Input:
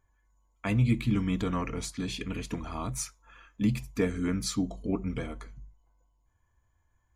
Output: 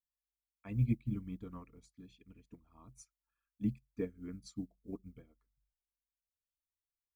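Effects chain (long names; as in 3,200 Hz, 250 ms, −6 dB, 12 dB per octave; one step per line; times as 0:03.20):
spectral envelope exaggerated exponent 1.5
background noise blue −66 dBFS
expander for the loud parts 2.5 to 1, over −42 dBFS
level −4.5 dB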